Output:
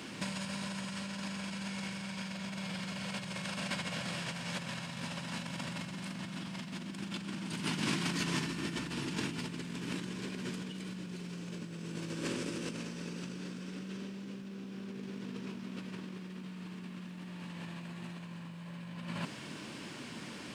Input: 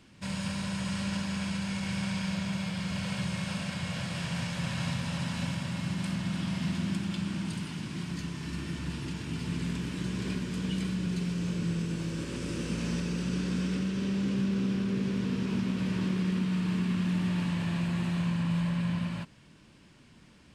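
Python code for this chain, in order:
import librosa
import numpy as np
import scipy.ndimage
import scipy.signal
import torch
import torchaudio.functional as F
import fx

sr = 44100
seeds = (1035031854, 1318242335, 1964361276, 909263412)

y = fx.low_shelf(x, sr, hz=400.0, db=-4.0, at=(7.8, 8.4))
y = fx.over_compress(y, sr, threshold_db=-42.0, ratio=-1.0)
y = fx.dmg_noise_colour(y, sr, seeds[0], colour='brown', level_db=-56.0)
y = scipy.signal.sosfilt(scipy.signal.butter(2, 200.0, 'highpass', fs=sr, output='sos'), y)
y = y * librosa.db_to_amplitude(4.5)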